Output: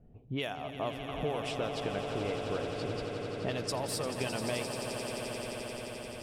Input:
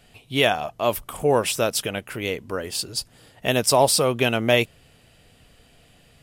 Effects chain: level-controlled noise filter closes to 360 Hz, open at -14.5 dBFS; compression 10:1, threshold -33 dBFS, peak gain reduction 21 dB; on a send: echo with a slow build-up 87 ms, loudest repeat 8, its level -11 dB

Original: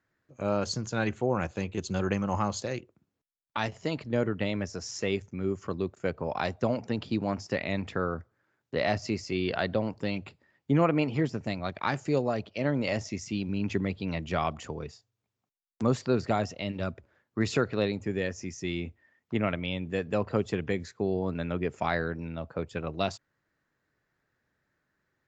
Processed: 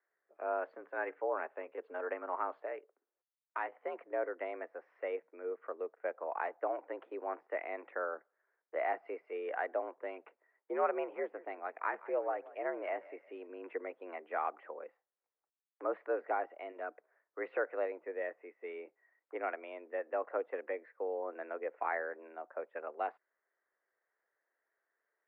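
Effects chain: 11.06–13.47 s: frequency-shifting echo 177 ms, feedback 37%, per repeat -36 Hz, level -19 dB; mistuned SSB +73 Hz 350–2000 Hz; trim -5.5 dB

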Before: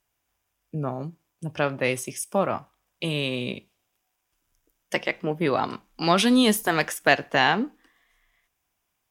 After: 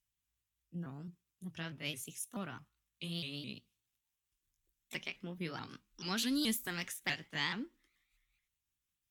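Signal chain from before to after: sawtooth pitch modulation +3.5 st, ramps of 215 ms; amplifier tone stack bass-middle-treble 6-0-2; trim +5.5 dB

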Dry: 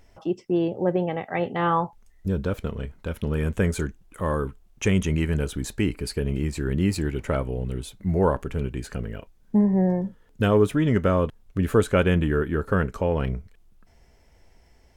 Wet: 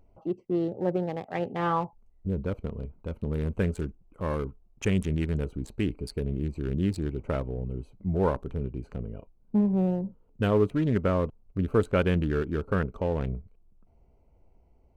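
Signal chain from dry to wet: local Wiener filter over 25 samples; trim -4 dB

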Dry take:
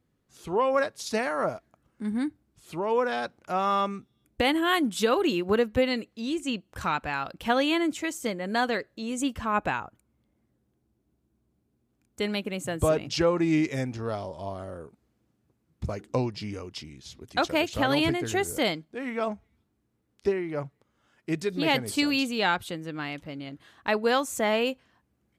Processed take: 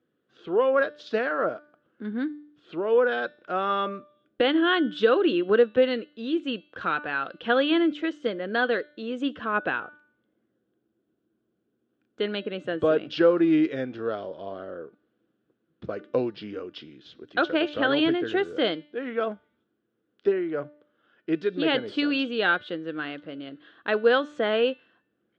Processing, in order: cabinet simulation 220–3500 Hz, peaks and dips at 330 Hz +5 dB, 480 Hz +6 dB, 900 Hz -9 dB, 1.5 kHz +8 dB, 2.2 kHz -7 dB, 3.3 kHz +5 dB; de-hum 296.3 Hz, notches 31

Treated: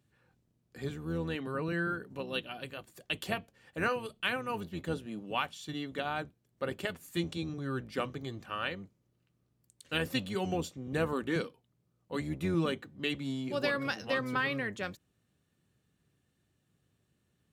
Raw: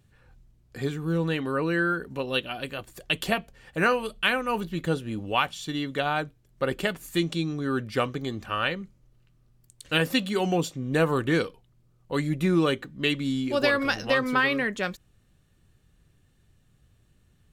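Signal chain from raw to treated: octave divider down 1 oct, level -2 dB; high-pass 130 Hz 12 dB/octave; trim -8.5 dB

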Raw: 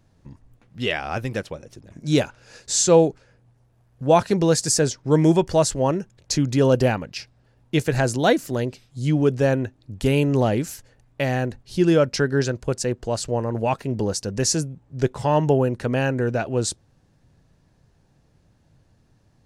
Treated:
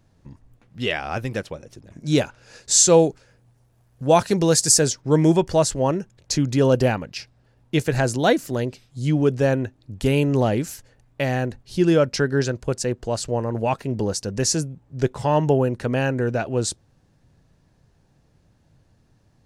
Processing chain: 2.71–5.01 s: treble shelf 4.8 kHz +8 dB

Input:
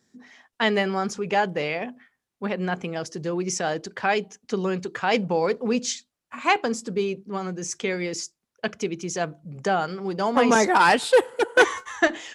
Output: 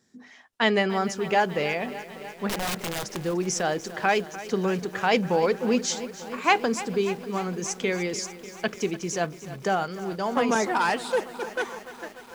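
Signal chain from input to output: fade out at the end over 3.28 s; 2.49–3.19 s: integer overflow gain 23.5 dB; bit-crushed delay 296 ms, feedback 80%, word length 7-bit, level -15 dB

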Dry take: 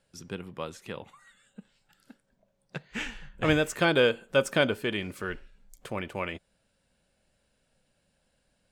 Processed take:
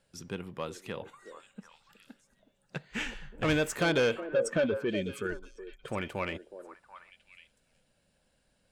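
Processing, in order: 4.20–5.88 s: spectral contrast enhancement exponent 1.9; saturation -21 dBFS, distortion -12 dB; repeats whose band climbs or falls 368 ms, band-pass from 440 Hz, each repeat 1.4 oct, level -8 dB

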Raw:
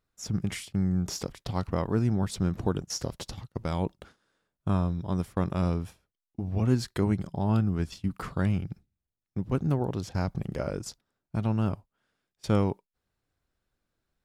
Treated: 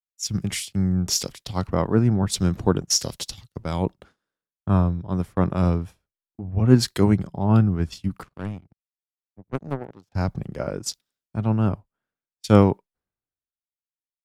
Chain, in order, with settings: 8.23–10.12 s: power-law waveshaper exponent 2; three bands expanded up and down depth 100%; trim +5 dB

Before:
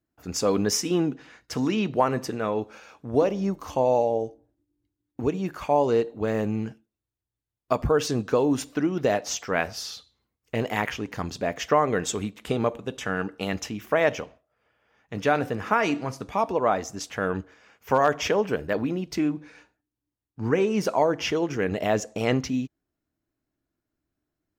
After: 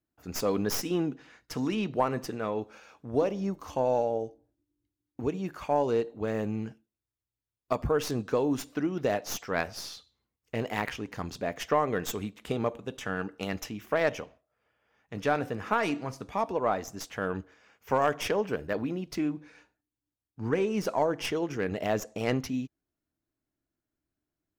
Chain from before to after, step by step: tracing distortion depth 0.11 ms; trim -5 dB

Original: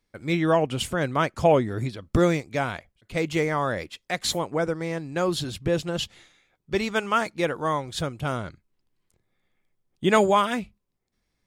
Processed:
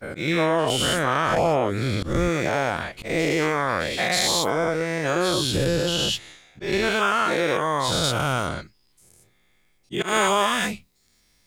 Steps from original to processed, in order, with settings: every event in the spectrogram widened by 240 ms; treble shelf 2.3 kHz +2 dB, from 8.04 s +7 dB, from 10.08 s +12 dB; compression 3:1, threshold -23 dBFS, peak gain reduction 12.5 dB; slow attack 138 ms; trim +2.5 dB

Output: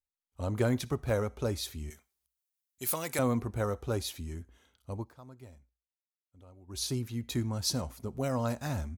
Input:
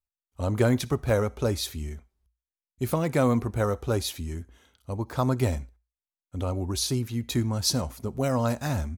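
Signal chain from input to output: 1.90–3.19 s: tilt EQ +4 dB/octave; 4.98–6.83 s: dip -20 dB, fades 0.16 s; trim -6 dB

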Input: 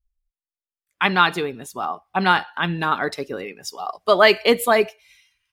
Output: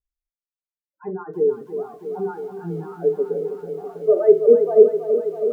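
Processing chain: bass shelf 87 Hz -9 dB; in parallel at -7.5 dB: hard clipper -14.5 dBFS, distortion -8 dB; on the sum: loudest bins only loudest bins 8; resonant low-pass 450 Hz, resonance Q 3.8; on a send at -6 dB: reverberation, pre-delay 4 ms; on the sum: bit-crushed delay 325 ms, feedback 80%, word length 8-bit, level -9.5 dB; trim -9 dB

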